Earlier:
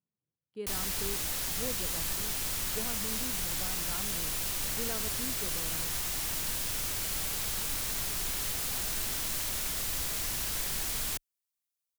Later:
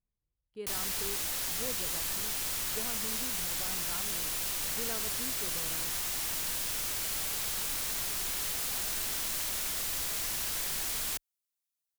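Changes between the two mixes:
speech: remove HPF 140 Hz 24 dB/oct; master: add low shelf 240 Hz -7.5 dB

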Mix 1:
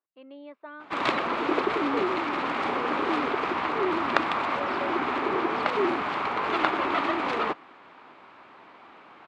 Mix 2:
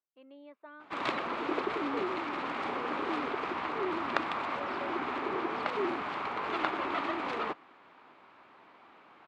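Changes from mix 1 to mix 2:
speech -7.5 dB; background -7.0 dB

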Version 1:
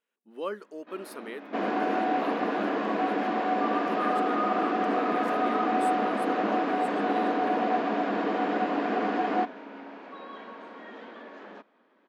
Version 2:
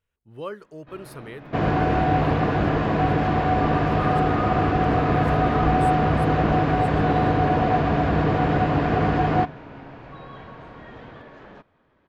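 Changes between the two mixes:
second sound +5.0 dB; master: remove brick-wall FIR high-pass 190 Hz

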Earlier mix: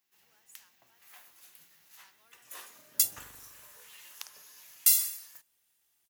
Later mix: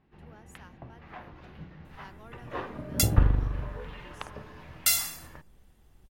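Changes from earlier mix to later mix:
first sound: add air absorption 290 m; master: remove differentiator

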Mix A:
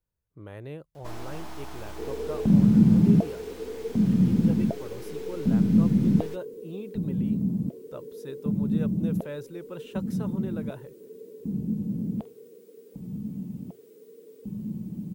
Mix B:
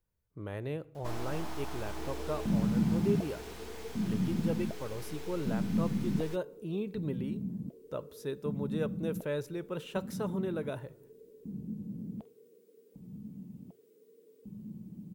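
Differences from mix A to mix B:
speech: send on; second sound -11.0 dB

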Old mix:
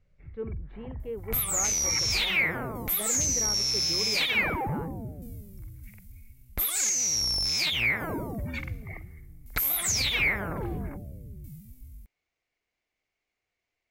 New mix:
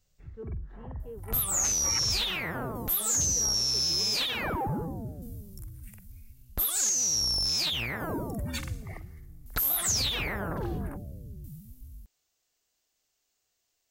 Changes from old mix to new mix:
speech -7.5 dB; first sound: remove tape spacing loss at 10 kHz 26 dB; master: add bell 2200 Hz -14.5 dB 0.35 oct

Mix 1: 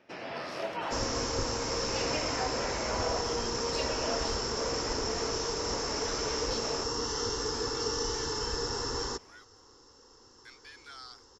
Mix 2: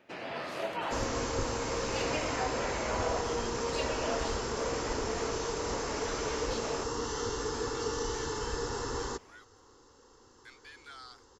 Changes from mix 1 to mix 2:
first sound: add high shelf 6400 Hz +7 dB; master: add bell 5400 Hz -12.5 dB 0.22 oct

